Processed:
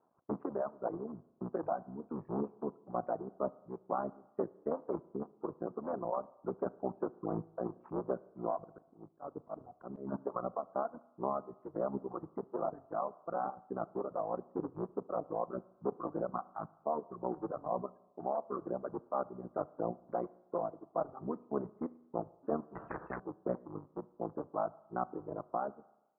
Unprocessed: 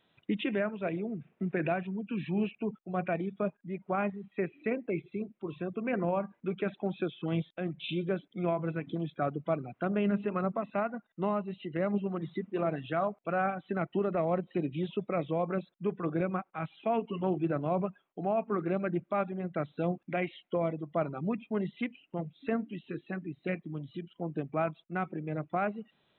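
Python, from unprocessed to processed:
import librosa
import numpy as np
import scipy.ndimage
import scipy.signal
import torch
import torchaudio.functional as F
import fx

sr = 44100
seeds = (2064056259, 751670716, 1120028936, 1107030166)

y = fx.cycle_switch(x, sr, every=3, mode='muted')
y = fx.highpass(y, sr, hz=630.0, slope=6)
y = fx.dereverb_blind(y, sr, rt60_s=1.3)
y = scipy.signal.sosfilt(scipy.signal.butter(8, 1200.0, 'lowpass', fs=sr, output='sos'), y)
y = fx.auto_swell(y, sr, attack_ms=215.0, at=(8.58, 10.12))
y = fx.rider(y, sr, range_db=4, speed_s=0.5)
y = fx.rev_spring(y, sr, rt60_s=1.0, pass_ms=(33, 37), chirp_ms=20, drr_db=19.5)
y = fx.spectral_comp(y, sr, ratio=4.0, at=(22.75, 23.2))
y = y * 10.0 ** (3.0 / 20.0)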